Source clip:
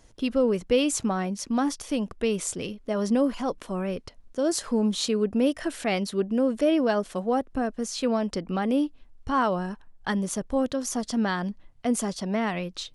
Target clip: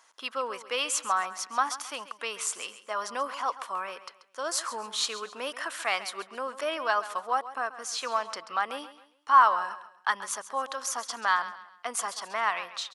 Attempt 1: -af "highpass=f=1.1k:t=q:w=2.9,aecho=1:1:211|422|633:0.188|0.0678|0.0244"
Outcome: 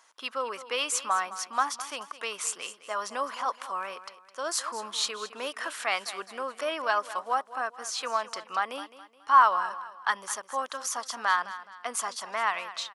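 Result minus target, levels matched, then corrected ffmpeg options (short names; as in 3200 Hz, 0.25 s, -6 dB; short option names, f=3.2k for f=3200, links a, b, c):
echo 76 ms late
-af "highpass=f=1.1k:t=q:w=2.9,aecho=1:1:135|270|405:0.188|0.0678|0.0244"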